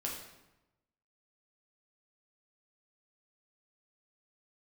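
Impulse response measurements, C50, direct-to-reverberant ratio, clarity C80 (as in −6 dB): 4.0 dB, −2.5 dB, 6.5 dB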